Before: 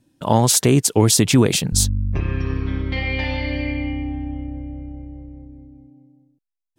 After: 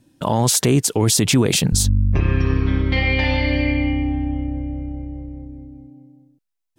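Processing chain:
brickwall limiter −12 dBFS, peak gain reduction 9.5 dB
level +5 dB

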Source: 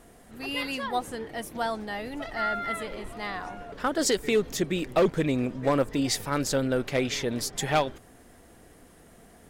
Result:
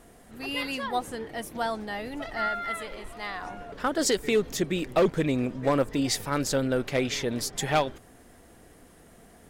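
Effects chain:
0:02.48–0:03.42: parametric band 170 Hz −6.5 dB 3 octaves

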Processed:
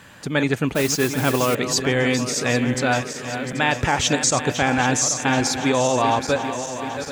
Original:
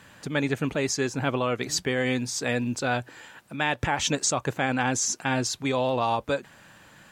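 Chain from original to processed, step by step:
feedback delay that plays each chunk backwards 392 ms, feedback 77%, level −10 dB
0:00.74–0:01.55: noise that follows the level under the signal 12 dB
level +5.5 dB

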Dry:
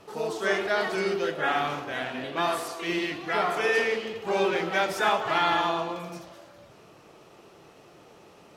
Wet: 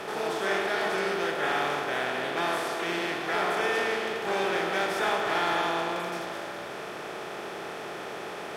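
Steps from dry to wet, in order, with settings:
compressor on every frequency bin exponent 0.4
hum removal 51.84 Hz, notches 29
asymmetric clip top −12 dBFS
level −7 dB

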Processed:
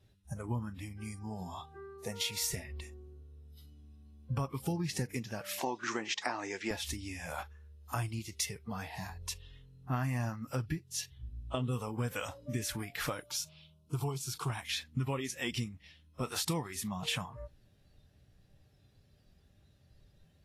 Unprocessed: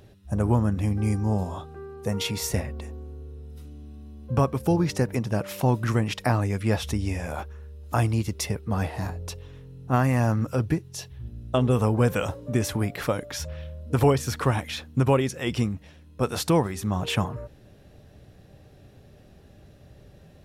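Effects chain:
0:05.59–0:06.71: loudspeaker in its box 280–7,500 Hz, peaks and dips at 360 Hz +5 dB, 870 Hz +4 dB, 1,900 Hz +3 dB, 6,300 Hz +5 dB
noise gate with hold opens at −47 dBFS
parametric band 460 Hz −7.5 dB 2.2 octaves
downward compressor 6 to 1, threshold −30 dBFS, peak gain reduction 11 dB
noise reduction from a noise print of the clip's start 12 dB
0:13.20–0:14.50: phaser with its sweep stopped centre 360 Hz, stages 8
Ogg Vorbis 32 kbit/s 48,000 Hz

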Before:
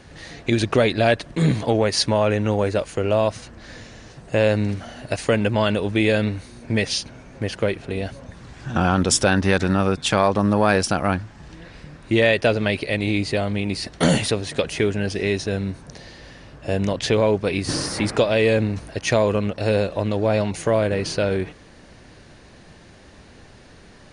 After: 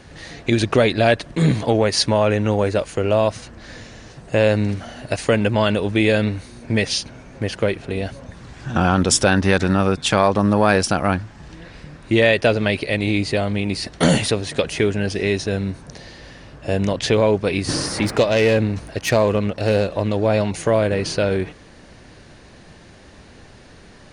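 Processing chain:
0:18.02–0:20.13: phase distortion by the signal itself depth 0.096 ms
level +2 dB

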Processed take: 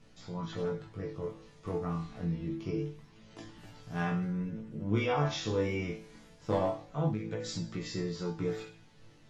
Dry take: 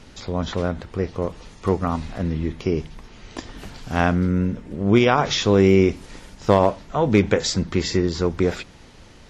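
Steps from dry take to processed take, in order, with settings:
parametric band 160 Hz +6.5 dB 1.4 octaves
resonators tuned to a chord A2 sus4, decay 0.46 s
chorus effect 0.25 Hz, delay 16.5 ms, depth 6.6 ms
0:07.09–0:07.94: downward compressor 12 to 1, threshold −36 dBFS, peak gain reduction 12.5 dB
level +4.5 dB

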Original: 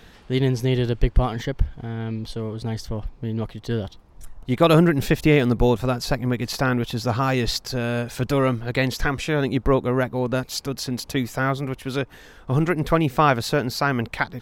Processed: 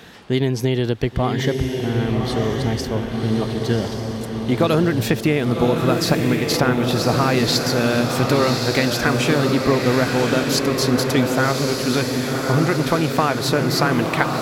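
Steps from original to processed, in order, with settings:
high-pass filter 120 Hz 12 dB per octave
downward compressor, threshold −22 dBFS, peak gain reduction 10.5 dB
on a send: feedback delay with all-pass diffusion 1,114 ms, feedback 54%, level −3 dB
on the sum: level +7 dB

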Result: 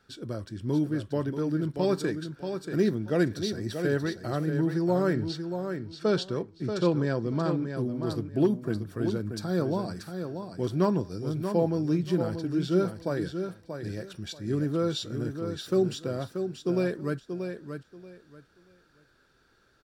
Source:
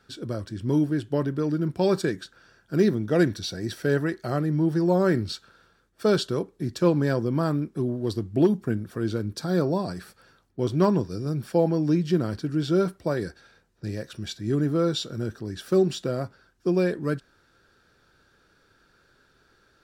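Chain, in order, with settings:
0:05.13–0:07.77: low-pass filter 6,400 Hz 12 dB per octave
repeating echo 633 ms, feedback 21%, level −7.5 dB
level −4 dB

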